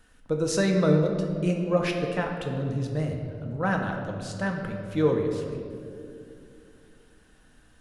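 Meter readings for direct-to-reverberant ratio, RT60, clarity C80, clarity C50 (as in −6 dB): 1.5 dB, 2.6 s, 5.5 dB, 4.5 dB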